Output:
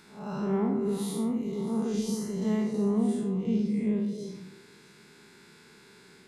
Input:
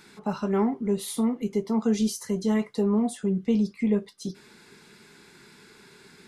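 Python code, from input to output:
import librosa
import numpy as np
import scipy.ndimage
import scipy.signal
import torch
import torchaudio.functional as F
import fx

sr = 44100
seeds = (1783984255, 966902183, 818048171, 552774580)

y = fx.spec_blur(x, sr, span_ms=169.0)
y = fx.echo_stepped(y, sr, ms=130, hz=160.0, octaves=1.4, feedback_pct=70, wet_db=-2.0)
y = y * librosa.db_to_amplitude(-1.5)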